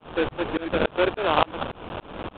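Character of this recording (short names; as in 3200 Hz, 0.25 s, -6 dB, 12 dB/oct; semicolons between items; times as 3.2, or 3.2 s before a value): a quantiser's noise floor 6-bit, dither triangular; tremolo saw up 3.5 Hz, depth 100%; aliases and images of a low sample rate 2000 Hz, jitter 20%; µ-law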